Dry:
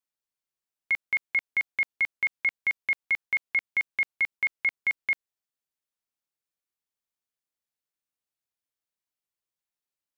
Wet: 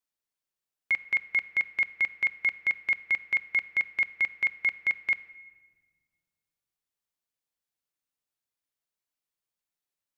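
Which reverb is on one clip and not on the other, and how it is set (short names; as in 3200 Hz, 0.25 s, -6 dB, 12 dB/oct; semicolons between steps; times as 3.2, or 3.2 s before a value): shoebox room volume 1800 m³, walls mixed, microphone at 0.38 m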